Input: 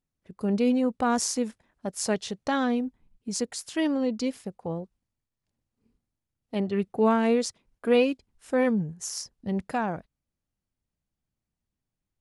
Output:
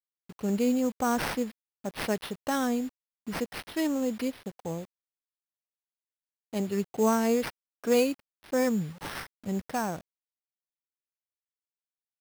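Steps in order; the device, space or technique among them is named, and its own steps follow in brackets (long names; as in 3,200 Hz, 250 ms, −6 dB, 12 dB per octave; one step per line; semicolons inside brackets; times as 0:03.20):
early 8-bit sampler (sample-rate reduction 7,100 Hz, jitter 0%; bit reduction 8 bits)
level −2.5 dB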